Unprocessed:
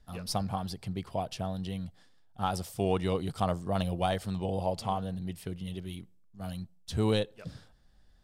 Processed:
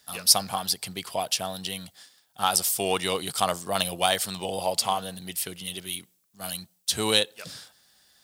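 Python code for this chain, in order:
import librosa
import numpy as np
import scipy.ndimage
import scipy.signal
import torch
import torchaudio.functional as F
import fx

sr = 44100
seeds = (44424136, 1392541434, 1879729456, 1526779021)

y = scipy.signal.sosfilt(scipy.signal.butter(2, 80.0, 'highpass', fs=sr, output='sos'), x)
y = fx.tilt_eq(y, sr, slope=4.5)
y = y * 10.0 ** (7.0 / 20.0)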